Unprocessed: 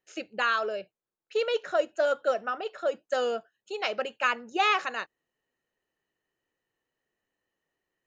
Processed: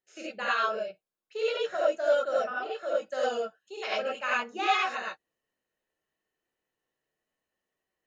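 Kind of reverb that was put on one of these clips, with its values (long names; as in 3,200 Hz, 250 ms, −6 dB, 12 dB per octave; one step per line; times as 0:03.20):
reverb whose tail is shaped and stops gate 120 ms rising, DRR −6.5 dB
level −8.5 dB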